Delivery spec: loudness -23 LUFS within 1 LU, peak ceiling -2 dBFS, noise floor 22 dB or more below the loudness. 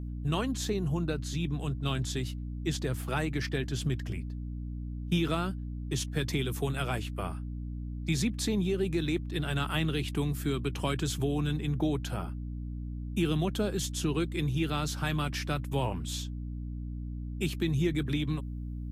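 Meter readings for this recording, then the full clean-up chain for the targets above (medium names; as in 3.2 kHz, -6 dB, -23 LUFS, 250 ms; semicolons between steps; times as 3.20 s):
hum 60 Hz; highest harmonic 300 Hz; hum level -34 dBFS; loudness -32.5 LUFS; peak level -17.0 dBFS; loudness target -23.0 LUFS
-> hum notches 60/120/180/240/300 Hz; trim +9.5 dB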